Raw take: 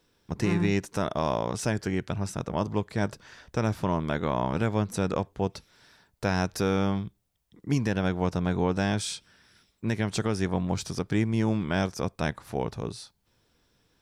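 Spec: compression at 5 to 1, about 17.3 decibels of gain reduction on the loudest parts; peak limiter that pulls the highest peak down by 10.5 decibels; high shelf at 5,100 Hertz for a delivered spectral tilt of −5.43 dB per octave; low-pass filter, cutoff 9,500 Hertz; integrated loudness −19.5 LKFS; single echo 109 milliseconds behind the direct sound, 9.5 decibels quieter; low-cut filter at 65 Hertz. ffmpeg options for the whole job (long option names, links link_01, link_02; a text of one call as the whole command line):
ffmpeg -i in.wav -af "highpass=65,lowpass=9500,highshelf=frequency=5100:gain=-5,acompressor=threshold=-41dB:ratio=5,alimiter=level_in=13dB:limit=-24dB:level=0:latency=1,volume=-13dB,aecho=1:1:109:0.335,volume=28.5dB" out.wav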